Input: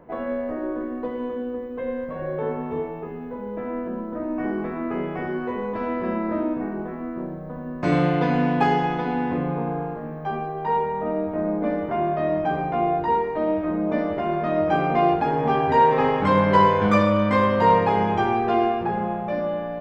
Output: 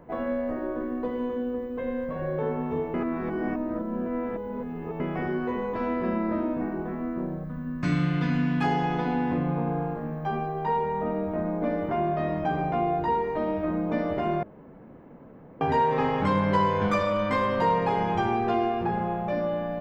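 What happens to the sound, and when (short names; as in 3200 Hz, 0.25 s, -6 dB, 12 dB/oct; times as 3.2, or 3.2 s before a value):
2.94–5 reverse
7.44–8.64 band shelf 570 Hz -11.5 dB
14.43–15.61 room tone
whole clip: tone controls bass +4 dB, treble +4 dB; de-hum 104.1 Hz, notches 6; compressor 2:1, threshold -22 dBFS; gain -1.5 dB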